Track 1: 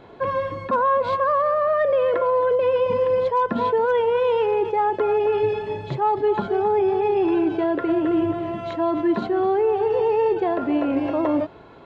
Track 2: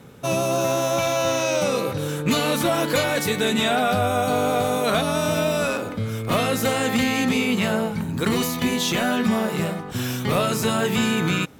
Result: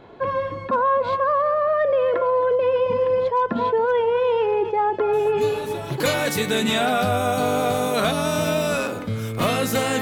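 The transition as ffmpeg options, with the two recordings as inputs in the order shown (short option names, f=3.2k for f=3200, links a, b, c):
-filter_complex "[1:a]asplit=2[a][b];[0:a]apad=whole_dur=10.01,atrim=end=10.01,atrim=end=6.002[c];[b]atrim=start=2.898:end=6.91[d];[a]atrim=start=2.03:end=2.9,asetpts=PTS-STARTPTS,volume=-14dB,afade=t=in:d=0.004:c=hsin,afade=t=out:st=0.866:d=0.004:c=hsin,adelay=226233S[e];[c][d]acrossfade=d=0.004:c1=hsin:c2=hsin[f];[f][e]amix=inputs=2:normalize=0"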